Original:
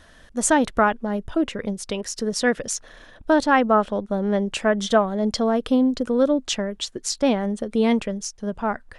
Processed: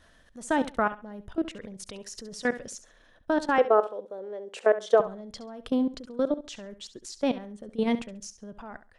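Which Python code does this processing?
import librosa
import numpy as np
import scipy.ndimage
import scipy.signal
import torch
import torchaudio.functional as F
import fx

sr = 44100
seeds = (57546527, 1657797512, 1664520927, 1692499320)

y = fx.level_steps(x, sr, step_db=18)
y = fx.highpass_res(y, sr, hz=460.0, q=3.8, at=(3.58, 5.0))
y = fx.echo_feedback(y, sr, ms=68, feedback_pct=23, wet_db=-14.0)
y = y * librosa.db_to_amplitude(-5.0)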